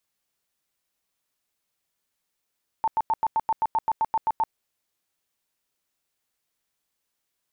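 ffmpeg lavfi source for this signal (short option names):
-f lavfi -i "aevalsrc='0.112*sin(2*PI*889*mod(t,0.13))*lt(mod(t,0.13),33/889)':d=1.69:s=44100"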